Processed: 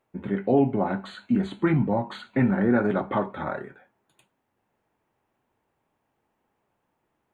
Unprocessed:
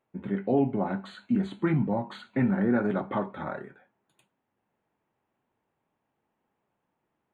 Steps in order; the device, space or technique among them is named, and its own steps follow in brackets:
low shelf boost with a cut just above (low-shelf EQ 81 Hz +5 dB; parametric band 180 Hz −3.5 dB 1 octave)
level +4.5 dB

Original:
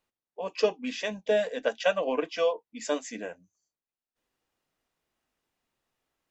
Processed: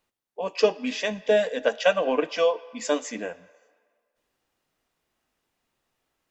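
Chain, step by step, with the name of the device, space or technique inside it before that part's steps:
filtered reverb send (on a send: high-pass filter 560 Hz 12 dB per octave + low-pass filter 5,400 Hz + convolution reverb RT60 1.8 s, pre-delay 6 ms, DRR 16.5 dB)
on the sum: level +4.5 dB

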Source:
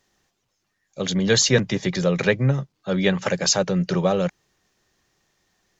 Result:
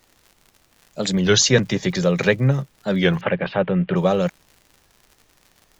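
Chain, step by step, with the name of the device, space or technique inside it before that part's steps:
warped LP (wow of a warped record 33 1/3 rpm, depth 160 cents; surface crackle 100 per second −39 dBFS; pink noise bed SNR 40 dB)
0:03.21–0:03.96: Butterworth low-pass 3,200 Hz 48 dB per octave
level +2 dB

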